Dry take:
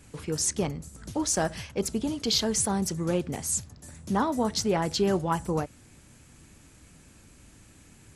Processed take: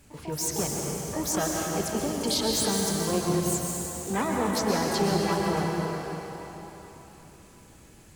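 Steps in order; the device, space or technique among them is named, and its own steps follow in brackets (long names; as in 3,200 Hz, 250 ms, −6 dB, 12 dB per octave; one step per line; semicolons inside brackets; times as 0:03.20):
shimmer-style reverb (pitch-shifted copies added +12 semitones −7 dB; convolution reverb RT60 3.9 s, pre-delay 115 ms, DRR −1.5 dB)
level −3.5 dB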